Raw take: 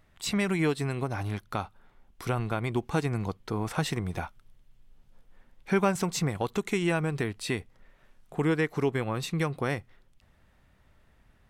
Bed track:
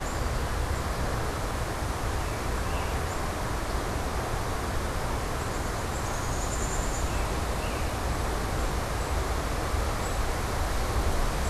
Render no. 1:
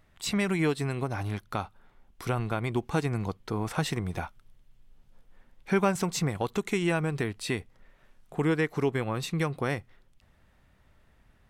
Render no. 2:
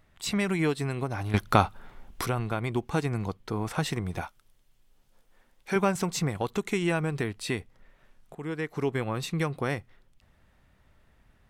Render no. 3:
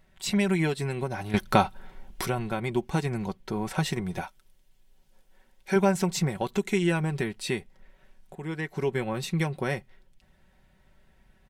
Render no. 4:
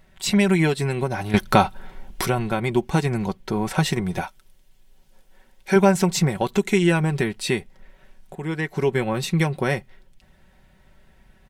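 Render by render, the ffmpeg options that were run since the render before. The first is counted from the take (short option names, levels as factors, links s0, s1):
-af anull
-filter_complex "[0:a]asettb=1/sr,asplit=3[s0][s1][s2];[s0]atrim=end=4.214[s3];[s1]atrim=start=4.21:end=5.76,asetpts=PTS-STARTPTS,afade=t=in:d=0.004:c=qsin,afade=t=out:st=1.546:d=0.004:c=qsin,bass=f=250:g=-8,treble=f=4000:g=6[s4];[s2]atrim=start=5.756[s5];[s3][s4]acrossfade=d=0.004:c1=hsin:c2=qsin[s6];[s6][s5]acrossfade=d=0.004:c1=qsin:c2=hsin,asplit=4[s7][s8][s9][s10];[s7]atrim=end=1.342[s11];[s8]atrim=start=1.338:end=2.262,asetpts=PTS-STARTPTS,volume=3.76[s12];[s9]atrim=start=2.258:end=8.35,asetpts=PTS-STARTPTS,afade=t=out:st=6.088:d=0.004:c=hsin:silence=0.199526[s13];[s10]atrim=start=8.35,asetpts=PTS-STARTPTS,afade=t=in:d=0.63:silence=0.199526[s14];[s11][s12]acrossfade=d=0.004:c1=hsin:c2=hsin[s15];[s13][s14]concat=n=2:v=0:a=1[s16];[s15][s16]acrossfade=d=0.004:c1=hsin:c2=hsin"
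-af "bandreject=f=1200:w=5.3,aecho=1:1:5.3:0.54"
-af "volume=2.11,alimiter=limit=0.708:level=0:latency=1"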